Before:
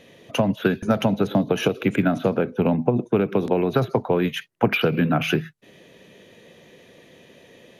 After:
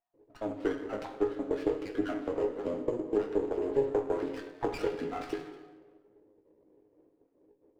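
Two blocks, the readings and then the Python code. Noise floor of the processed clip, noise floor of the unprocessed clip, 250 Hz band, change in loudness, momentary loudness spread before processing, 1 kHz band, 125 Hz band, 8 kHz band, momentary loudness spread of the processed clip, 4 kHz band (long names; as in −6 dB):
−70 dBFS, −52 dBFS, −13.5 dB, −11.0 dB, 4 LU, −12.5 dB, −23.5 dB, can't be measured, 9 LU, −20.5 dB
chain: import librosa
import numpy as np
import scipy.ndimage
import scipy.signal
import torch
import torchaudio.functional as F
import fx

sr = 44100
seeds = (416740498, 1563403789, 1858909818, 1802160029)

p1 = fx.spec_dropout(x, sr, seeds[0], share_pct=32)
p2 = np.repeat(scipy.signal.resample_poly(p1, 1, 6), 6)[:len(p1)]
p3 = fx.env_lowpass(p2, sr, base_hz=320.0, full_db=-21.0)
p4 = scipy.signal.sosfilt(scipy.signal.butter(2, 2700.0, 'lowpass', fs=sr, output='sos'), p3)
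p5 = fx.low_shelf_res(p4, sr, hz=240.0, db=-9.5, q=3.0)
p6 = fx.resonator_bank(p5, sr, root=44, chord='sus4', decay_s=0.23)
p7 = p6 + fx.echo_single(p6, sr, ms=236, db=-20.5, dry=0)
p8 = fx.rev_plate(p7, sr, seeds[1], rt60_s=1.3, hf_ratio=0.7, predelay_ms=0, drr_db=5.0)
y = fx.running_max(p8, sr, window=9)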